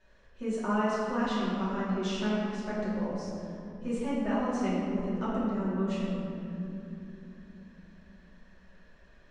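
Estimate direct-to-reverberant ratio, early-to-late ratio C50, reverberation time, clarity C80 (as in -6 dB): -10.0 dB, -2.0 dB, 3.0 s, -0.5 dB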